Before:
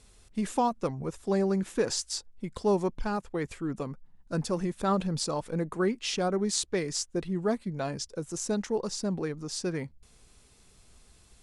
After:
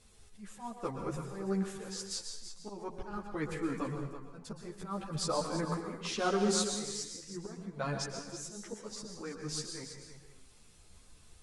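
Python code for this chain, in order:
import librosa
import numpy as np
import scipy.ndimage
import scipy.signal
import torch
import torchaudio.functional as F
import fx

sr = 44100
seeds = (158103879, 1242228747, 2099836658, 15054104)

y = fx.dynamic_eq(x, sr, hz=1300.0, q=1.2, threshold_db=-48.0, ratio=4.0, max_db=6)
y = fx.auto_swell(y, sr, attack_ms=472.0)
y = y + 10.0 ** (-10.5 / 20.0) * np.pad(y, (int(330 * sr / 1000.0), 0))[:len(y)]
y = fx.rev_plate(y, sr, seeds[0], rt60_s=0.64, hf_ratio=1.0, predelay_ms=105, drr_db=5.0)
y = fx.ensemble(y, sr)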